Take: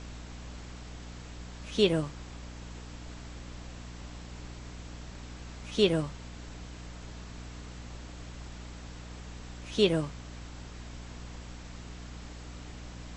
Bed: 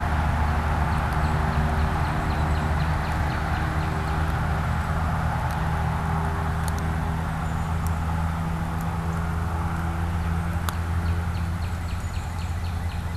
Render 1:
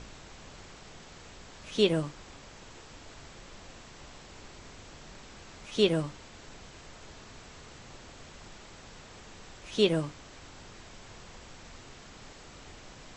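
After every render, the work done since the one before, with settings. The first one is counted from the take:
mains-hum notches 60/120/180/240/300 Hz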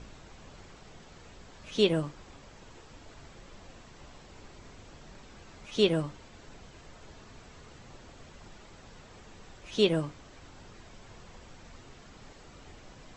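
broadband denoise 6 dB, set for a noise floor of −51 dBFS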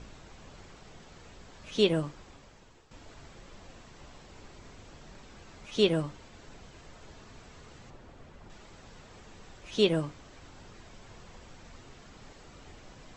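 0:02.14–0:02.91: fade out, to −11 dB
0:07.90–0:08.50: high-shelf EQ 2,900 Hz −11 dB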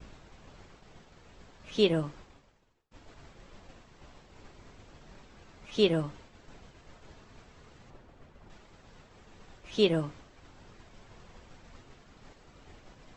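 downward expander −46 dBFS
high-shelf EQ 7,200 Hz −8.5 dB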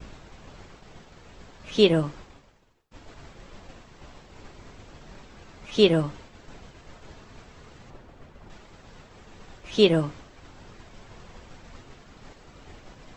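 level +6.5 dB

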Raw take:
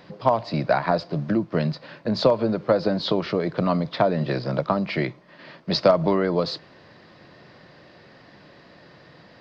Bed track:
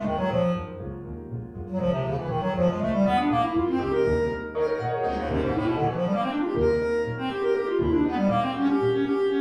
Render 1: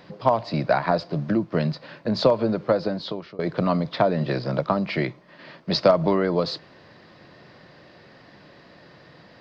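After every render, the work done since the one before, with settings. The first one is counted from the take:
0:02.62–0:03.39: fade out, to −22.5 dB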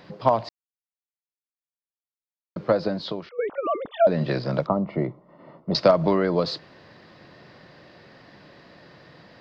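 0:00.49–0:02.56: silence
0:03.29–0:04.07: three sine waves on the formant tracks
0:04.67–0:05.75: Savitzky-Golay smoothing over 65 samples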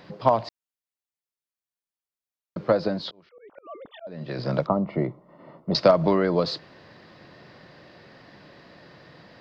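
0:03.02–0:04.39: volume swells 756 ms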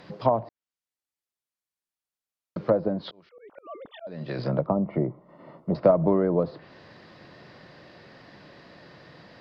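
treble cut that deepens with the level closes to 1,000 Hz, closed at −21.5 dBFS
dynamic equaliser 1,300 Hz, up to −3 dB, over −35 dBFS, Q 0.92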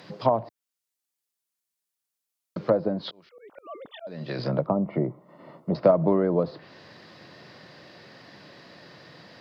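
high-pass filter 88 Hz
high-shelf EQ 4,300 Hz +9.5 dB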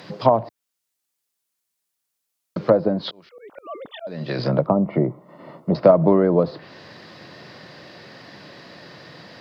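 level +6 dB
brickwall limiter −1 dBFS, peak gain reduction 1 dB

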